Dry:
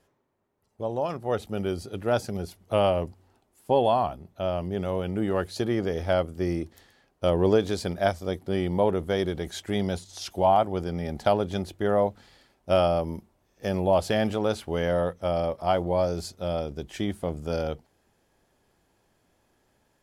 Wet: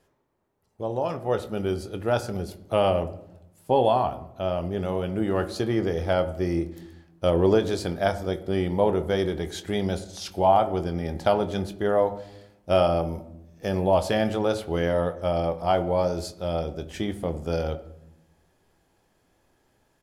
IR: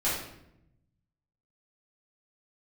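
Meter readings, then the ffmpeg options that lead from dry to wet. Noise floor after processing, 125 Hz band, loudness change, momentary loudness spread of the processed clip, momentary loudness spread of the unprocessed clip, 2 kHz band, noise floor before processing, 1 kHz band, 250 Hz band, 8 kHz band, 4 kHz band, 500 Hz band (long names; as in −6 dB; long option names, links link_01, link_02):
−68 dBFS, +1.5 dB, +1.5 dB, 11 LU, 10 LU, +1.0 dB, −70 dBFS, +1.5 dB, +1.5 dB, +0.5 dB, +0.5 dB, +1.5 dB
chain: -filter_complex "[0:a]asplit=2[link_01][link_02];[link_02]adelay=24,volume=-13dB[link_03];[link_01][link_03]amix=inputs=2:normalize=0,asplit=2[link_04][link_05];[1:a]atrim=start_sample=2205,highshelf=frequency=3700:gain=-10[link_06];[link_05][link_06]afir=irnorm=-1:irlink=0,volume=-18.5dB[link_07];[link_04][link_07]amix=inputs=2:normalize=0"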